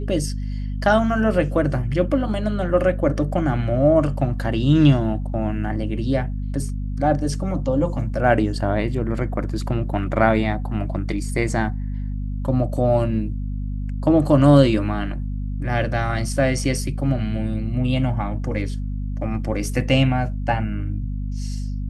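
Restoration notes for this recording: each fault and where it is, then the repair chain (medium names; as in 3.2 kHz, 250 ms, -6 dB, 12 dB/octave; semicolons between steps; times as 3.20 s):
hum 50 Hz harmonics 5 -26 dBFS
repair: de-hum 50 Hz, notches 5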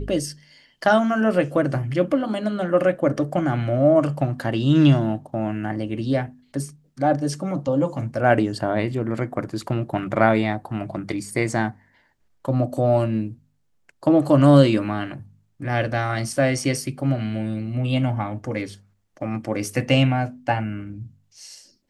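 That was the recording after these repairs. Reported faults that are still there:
nothing left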